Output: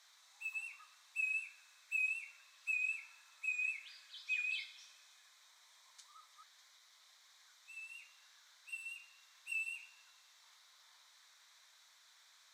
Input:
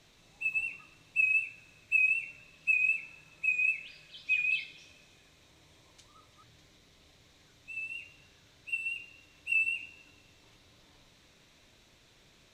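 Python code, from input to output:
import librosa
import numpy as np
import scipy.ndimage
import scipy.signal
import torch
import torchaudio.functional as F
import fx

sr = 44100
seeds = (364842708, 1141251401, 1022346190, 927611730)

y = scipy.signal.sosfilt(scipy.signal.butter(4, 1000.0, 'highpass', fs=sr, output='sos'), x)
y = fx.peak_eq(y, sr, hz=2700.0, db=-13.0, octaves=0.42)
y = F.gain(torch.from_numpy(y), 1.0).numpy()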